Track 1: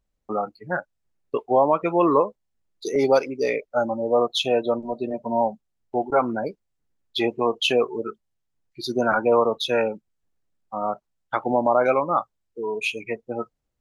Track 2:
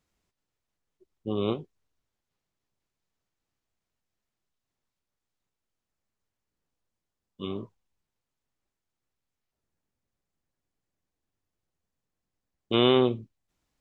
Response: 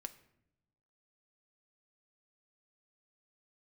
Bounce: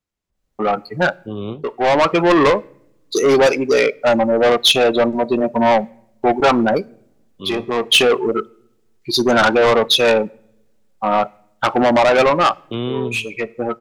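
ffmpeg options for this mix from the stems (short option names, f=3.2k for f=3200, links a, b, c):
-filter_complex "[0:a]asoftclip=type=tanh:threshold=-21.5dB,adynamicequalizer=threshold=0.00794:dfrequency=2100:dqfactor=0.7:tfrequency=2100:tqfactor=0.7:attack=5:release=100:ratio=0.375:range=2:mode=boostabove:tftype=highshelf,adelay=300,volume=-0.5dB,asplit=2[a][b];[b]volume=-6.5dB[c];[1:a]acrossover=split=260[d][e];[e]acompressor=threshold=-36dB:ratio=2.5[f];[d][f]amix=inputs=2:normalize=0,volume=-6.5dB,asplit=2[g][h];[h]apad=whole_len=622193[i];[a][i]sidechaincompress=threshold=-51dB:ratio=8:attack=33:release=390[j];[2:a]atrim=start_sample=2205[k];[c][k]afir=irnorm=-1:irlink=0[l];[j][g][l]amix=inputs=3:normalize=0,dynaudnorm=f=170:g=7:m=11dB"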